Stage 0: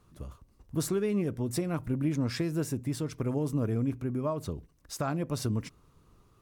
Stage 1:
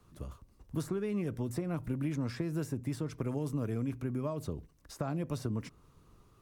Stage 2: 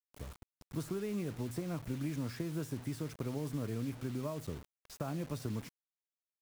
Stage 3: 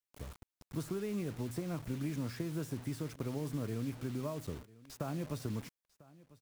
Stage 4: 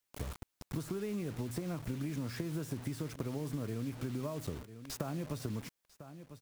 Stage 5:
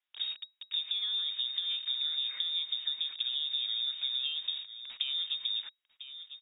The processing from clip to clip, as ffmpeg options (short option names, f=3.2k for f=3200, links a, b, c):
-filter_complex "[0:a]acrossover=split=150|880|1800[a][b][c][d];[a]acompressor=threshold=-39dB:ratio=4[e];[b]acompressor=threshold=-34dB:ratio=4[f];[c]acompressor=threshold=-51dB:ratio=4[g];[d]acompressor=threshold=-51dB:ratio=4[h];[e][f][g][h]amix=inputs=4:normalize=0"
-af "acrusher=bits=7:mix=0:aa=0.000001,volume=-3.5dB"
-af "aecho=1:1:997:0.0841"
-af "acompressor=threshold=-44dB:ratio=6,volume=9dB"
-af "lowpass=f=3.2k:t=q:w=0.5098,lowpass=f=3.2k:t=q:w=0.6013,lowpass=f=3.2k:t=q:w=0.9,lowpass=f=3.2k:t=q:w=2.563,afreqshift=-3800,crystalizer=i=6:c=0,volume=-6.5dB"